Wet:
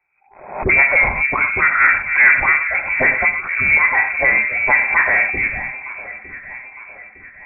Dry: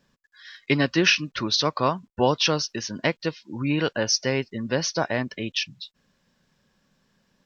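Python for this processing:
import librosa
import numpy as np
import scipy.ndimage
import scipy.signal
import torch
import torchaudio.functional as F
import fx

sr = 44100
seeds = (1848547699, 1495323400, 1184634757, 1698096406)

y = fx.spec_delay(x, sr, highs='early', ms=138)
y = fx.dynamic_eq(y, sr, hz=260.0, q=2.8, threshold_db=-39.0, ratio=4.0, max_db=-5)
y = fx.leveller(y, sr, passes=3)
y = fx.env_lowpass_down(y, sr, base_hz=1600.0, full_db=-14.5)
y = fx.echo_alternate(y, sr, ms=454, hz=1000.0, feedback_pct=69, wet_db=-12)
y = fx.rev_gated(y, sr, seeds[0], gate_ms=140, shape='flat', drr_db=4.5)
y = fx.freq_invert(y, sr, carrier_hz=2500)
y = fx.pre_swell(y, sr, db_per_s=99.0)
y = F.gain(torch.from_numpy(y), 1.0).numpy()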